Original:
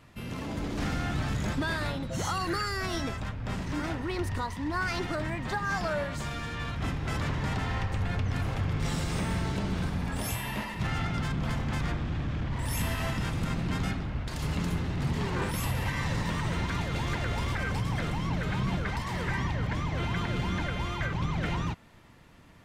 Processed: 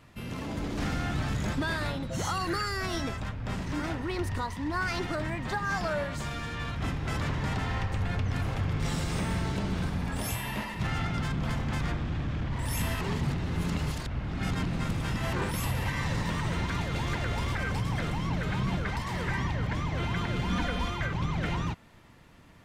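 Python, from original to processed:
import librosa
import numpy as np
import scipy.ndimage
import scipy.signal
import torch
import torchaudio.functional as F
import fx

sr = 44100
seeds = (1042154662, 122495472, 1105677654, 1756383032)

y = fx.comb(x, sr, ms=4.1, depth=0.93, at=(20.49, 20.9))
y = fx.edit(y, sr, fx.reverse_span(start_s=13.01, length_s=2.32), tone=tone)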